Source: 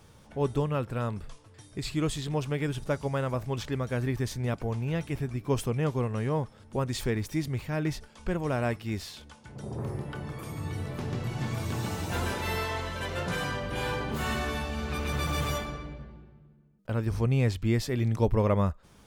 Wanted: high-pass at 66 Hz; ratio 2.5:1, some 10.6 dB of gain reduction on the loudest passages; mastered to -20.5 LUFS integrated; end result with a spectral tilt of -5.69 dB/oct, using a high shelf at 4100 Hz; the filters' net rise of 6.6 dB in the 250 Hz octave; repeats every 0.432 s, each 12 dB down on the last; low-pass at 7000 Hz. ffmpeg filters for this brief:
-af "highpass=66,lowpass=7k,equalizer=f=250:t=o:g=8.5,highshelf=f=4.1k:g=8,acompressor=threshold=-33dB:ratio=2.5,aecho=1:1:432|864|1296:0.251|0.0628|0.0157,volume=14dB"

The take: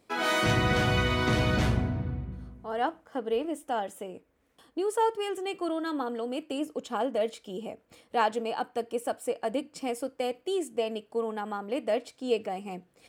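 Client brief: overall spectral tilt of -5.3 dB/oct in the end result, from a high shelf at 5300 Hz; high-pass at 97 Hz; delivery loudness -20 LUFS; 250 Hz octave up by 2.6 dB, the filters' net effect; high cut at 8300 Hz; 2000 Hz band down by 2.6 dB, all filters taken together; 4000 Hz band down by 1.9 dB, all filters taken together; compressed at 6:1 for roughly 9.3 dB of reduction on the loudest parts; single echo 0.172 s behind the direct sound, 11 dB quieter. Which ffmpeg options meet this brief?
-af "highpass=97,lowpass=8.3k,equalizer=f=250:t=o:g=3.5,equalizer=f=2k:t=o:g=-4,equalizer=f=4k:t=o:g=-4,highshelf=f=5.3k:g=8.5,acompressor=threshold=-31dB:ratio=6,aecho=1:1:172:0.282,volume=16dB"

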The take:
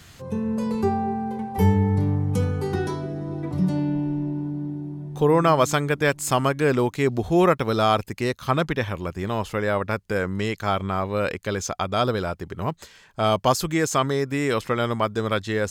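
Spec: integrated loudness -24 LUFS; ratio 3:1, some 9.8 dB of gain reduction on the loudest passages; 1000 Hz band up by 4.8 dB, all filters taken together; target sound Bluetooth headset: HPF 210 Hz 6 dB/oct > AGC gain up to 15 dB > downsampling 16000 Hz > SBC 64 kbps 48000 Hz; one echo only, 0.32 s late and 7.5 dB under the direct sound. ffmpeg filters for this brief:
-af "equalizer=f=1k:t=o:g=6.5,acompressor=threshold=-24dB:ratio=3,highpass=f=210:p=1,aecho=1:1:320:0.422,dynaudnorm=m=15dB,aresample=16000,aresample=44100,volume=3dB" -ar 48000 -c:a sbc -b:a 64k

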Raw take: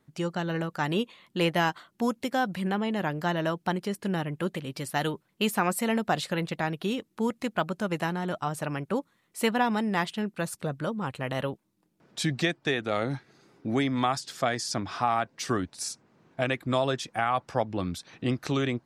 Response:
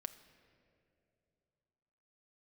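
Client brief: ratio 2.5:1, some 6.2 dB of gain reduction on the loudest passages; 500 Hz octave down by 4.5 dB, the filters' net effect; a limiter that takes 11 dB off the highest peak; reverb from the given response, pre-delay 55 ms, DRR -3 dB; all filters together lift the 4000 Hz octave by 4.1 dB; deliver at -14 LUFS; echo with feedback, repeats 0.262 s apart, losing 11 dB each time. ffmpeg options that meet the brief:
-filter_complex "[0:a]equalizer=f=500:t=o:g=-6,equalizer=f=4k:t=o:g=5.5,acompressor=threshold=-31dB:ratio=2.5,alimiter=level_in=2.5dB:limit=-24dB:level=0:latency=1,volume=-2.5dB,aecho=1:1:262|524|786:0.282|0.0789|0.0221,asplit=2[a][b];[1:a]atrim=start_sample=2205,adelay=55[c];[b][c]afir=irnorm=-1:irlink=0,volume=6.5dB[d];[a][d]amix=inputs=2:normalize=0,volume=17.5dB"

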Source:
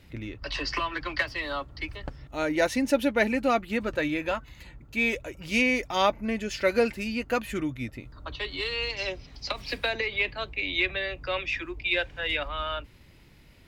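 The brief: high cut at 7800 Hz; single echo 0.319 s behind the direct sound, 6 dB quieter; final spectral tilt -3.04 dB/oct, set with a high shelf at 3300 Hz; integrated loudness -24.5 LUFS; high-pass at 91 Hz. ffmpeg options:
-af "highpass=91,lowpass=7.8k,highshelf=f=3.3k:g=8,aecho=1:1:319:0.501,volume=1dB"

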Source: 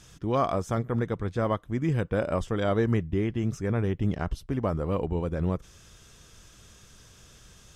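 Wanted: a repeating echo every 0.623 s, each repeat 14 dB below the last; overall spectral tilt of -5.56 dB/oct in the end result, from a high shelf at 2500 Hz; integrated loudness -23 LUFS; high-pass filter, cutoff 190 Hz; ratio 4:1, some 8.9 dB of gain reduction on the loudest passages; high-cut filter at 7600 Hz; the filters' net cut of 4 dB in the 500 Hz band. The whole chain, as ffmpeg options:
-af "highpass=190,lowpass=7.6k,equalizer=f=500:t=o:g=-5,highshelf=f=2.5k:g=5,acompressor=threshold=-34dB:ratio=4,aecho=1:1:623|1246:0.2|0.0399,volume=16dB"

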